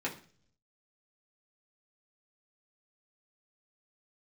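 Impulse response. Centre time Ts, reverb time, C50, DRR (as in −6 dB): 16 ms, 0.45 s, 12.0 dB, −5.0 dB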